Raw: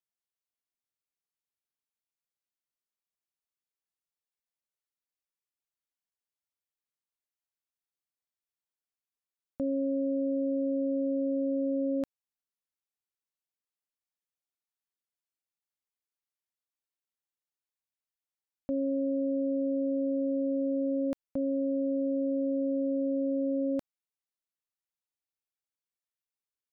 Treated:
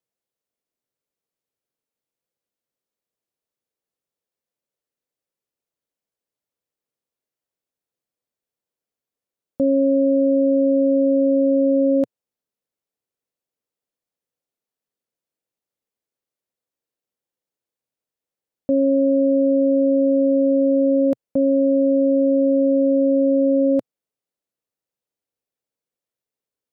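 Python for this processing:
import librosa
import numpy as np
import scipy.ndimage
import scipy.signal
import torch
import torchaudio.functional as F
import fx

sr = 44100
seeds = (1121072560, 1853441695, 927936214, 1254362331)

y = fx.graphic_eq(x, sr, hz=(125, 250, 500), db=(7, 6, 12))
y = y * 10.0 ** (2.0 / 20.0)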